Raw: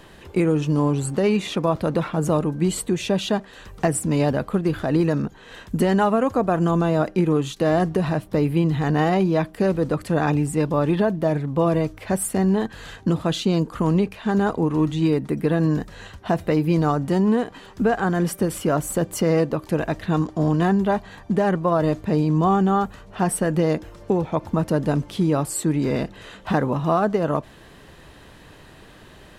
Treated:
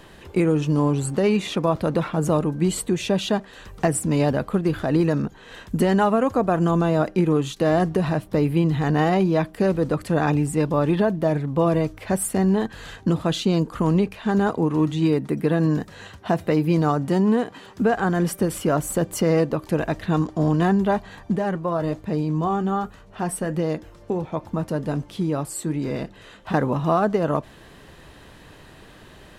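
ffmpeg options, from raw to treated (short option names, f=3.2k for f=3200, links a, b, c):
-filter_complex "[0:a]asettb=1/sr,asplit=3[a][b][c];[a]atrim=end=14.484[d];[b]atrim=start=14.48:end=17.97,asetpts=PTS-STARTPTS,afade=t=in:d=0.004:c=qsin,afade=t=out:st=3.486:d=0.004:c=qsin,highpass=83[e];[c]atrim=start=17.966[f];[d][e]acrossfade=d=0.004:c1=hsin:c2=qsin[g];[g][f]acrossfade=d=0.004:c1=qsin:c2=hsin,asettb=1/sr,asplit=3[h][i][j];[h]atrim=end=21.364[k];[i]atrim=start=21.36:end=26.54,asetpts=PTS-STARTPTS,afade=t=in:d=0.004:c=qsin,afade=t=out:st=5.176:d=0.004:c=qsin,flanger=delay=6:depth=2:regen=-76:speed=1.3:shape=sinusoidal[l];[j]atrim=start=26.536[m];[k][l]acrossfade=d=0.004:c1=hsin:c2=qsin[n];[n][m]acrossfade=d=0.004:c1=qsin:c2=hsin"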